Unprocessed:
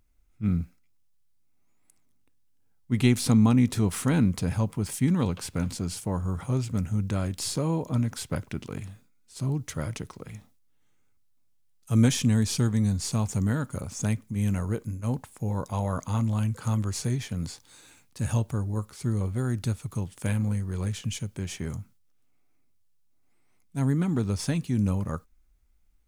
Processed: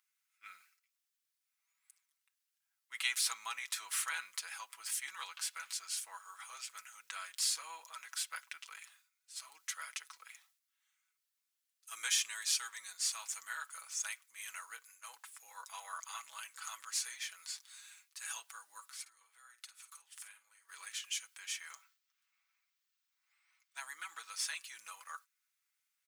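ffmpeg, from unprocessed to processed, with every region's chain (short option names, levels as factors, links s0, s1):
-filter_complex "[0:a]asettb=1/sr,asplit=3[s0][s1][s2];[s0]atrim=end=19.014[s3];[s1]atrim=start=19.01:end=20.69,asetpts=PTS-STARTPTS,afade=t=in:d=0.004:c=qsin,afade=t=out:st=1.676:d=0.004:c=qsin,acompressor=threshold=0.00891:ratio=5:attack=3.2:release=140:knee=1:detection=peak,asplit=2[s4][s5];[s5]adelay=50,volume=0.282[s6];[s4][s6]amix=inputs=2:normalize=0,atrim=end_sample=74088[s7];[s2]atrim=start=20.686[s8];[s3][s7]acrossfade=d=0.004:c1=hsin:c2=qsin[s9];[s9][s8]acrossfade=d=0.004:c1=qsin:c2=hsin,asettb=1/sr,asplit=3[s10][s11][s12];[s10]atrim=end=21.704[s13];[s11]atrim=start=21.7:end=23.8,asetpts=PTS-STARTPTS,afade=t=in:d=0.004:c=qsin,afade=t=out:st=2.096:d=0.004:c=qsin,equalizer=f=11000:t=o:w=0.9:g=-13,acontrast=29[s14];[s12]atrim=start=23.796[s15];[s13][s14]acrossfade=d=0.004:c1=hsin:c2=qsin[s16];[s16][s15]acrossfade=d=0.004:c1=qsin:c2=hsin,highpass=f=1300:w=0.5412,highpass=f=1300:w=1.3066,aecho=1:1:6.1:0.59,volume=0.75"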